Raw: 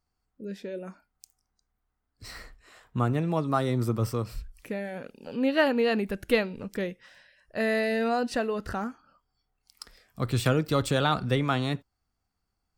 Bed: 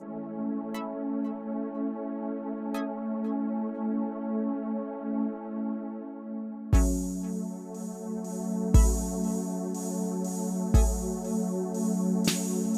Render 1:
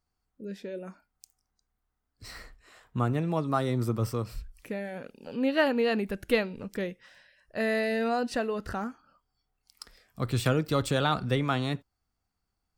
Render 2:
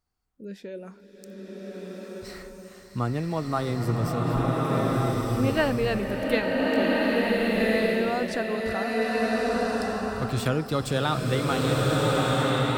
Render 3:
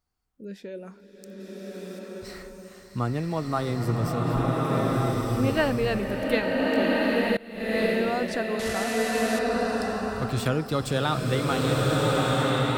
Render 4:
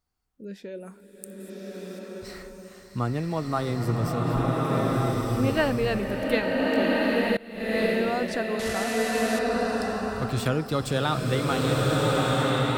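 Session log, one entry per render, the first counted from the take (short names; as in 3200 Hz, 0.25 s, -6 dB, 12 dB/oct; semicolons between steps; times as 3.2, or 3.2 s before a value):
gain -1.5 dB
bloom reverb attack 1.47 s, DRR -4.5 dB
1.4–1.99 high shelf 5400 Hz +9 dB; 7.37–7.81 fade in quadratic, from -21.5 dB; 8.59–9.39 delta modulation 64 kbps, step -26 dBFS
0.8–1.5 resonant high shelf 7100 Hz +9 dB, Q 3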